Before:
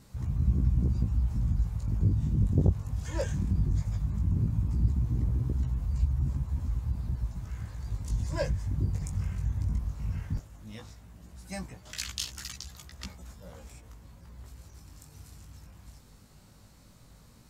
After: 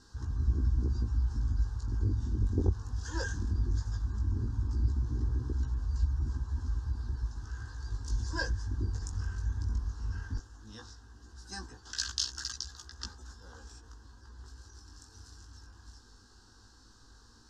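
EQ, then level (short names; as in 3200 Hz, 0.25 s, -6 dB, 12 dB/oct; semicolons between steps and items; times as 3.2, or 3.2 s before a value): synth low-pass 5400 Hz, resonance Q 2.4; bell 1600 Hz +15 dB 0.2 oct; fixed phaser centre 600 Hz, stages 6; 0.0 dB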